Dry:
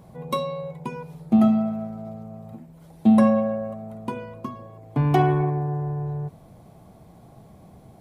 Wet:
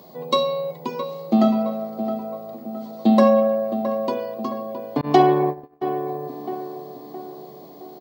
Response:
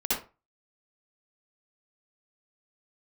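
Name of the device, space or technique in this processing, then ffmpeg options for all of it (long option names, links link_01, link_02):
old television with a line whistle: -filter_complex "[0:a]highpass=frequency=89:poles=1,highpass=frequency=210:width=0.5412,highpass=frequency=210:width=1.3066,equalizer=frequency=210:width_type=q:width=4:gain=-6,equalizer=frequency=900:width_type=q:width=4:gain=-4,equalizer=frequency=1500:width_type=q:width=4:gain=-8,equalizer=frequency=2400:width_type=q:width=4:gain=-7,equalizer=frequency=4400:width_type=q:width=4:gain=10,lowpass=frequency=6700:width=0.5412,lowpass=frequency=6700:width=1.3066,aeval=exprs='val(0)+0.00126*sin(2*PI*15625*n/s)':channel_layout=same,asplit=2[link_01][link_02];[link_02]adelay=666,lowpass=frequency=1700:poles=1,volume=-9.5dB,asplit=2[link_03][link_04];[link_04]adelay=666,lowpass=frequency=1700:poles=1,volume=0.53,asplit=2[link_05][link_06];[link_06]adelay=666,lowpass=frequency=1700:poles=1,volume=0.53,asplit=2[link_07][link_08];[link_08]adelay=666,lowpass=frequency=1700:poles=1,volume=0.53,asplit=2[link_09][link_10];[link_10]adelay=666,lowpass=frequency=1700:poles=1,volume=0.53,asplit=2[link_11][link_12];[link_12]adelay=666,lowpass=frequency=1700:poles=1,volume=0.53[link_13];[link_01][link_03][link_05][link_07][link_09][link_11][link_13]amix=inputs=7:normalize=0,asettb=1/sr,asplit=3[link_14][link_15][link_16];[link_14]atrim=end=5.014[link_17];[link_15]atrim=start=5.01:end=5.87,asetpts=PTS-STARTPTS,afade=type=in:duration=0.004:curve=qsin,afade=type=out:start_time=0.856:duration=0.004:curve=qsin,agate=range=-34dB:threshold=-28dB:ratio=16:detection=peak[link_18];[link_16]atrim=start=5.866[link_19];[link_17][link_18]acrossfade=duration=0.004:curve1=hsin:curve2=qsin[link_20];[link_20][link_19]acrossfade=duration=0.004:curve1=qsin:curve2=hsin,volume=7.5dB"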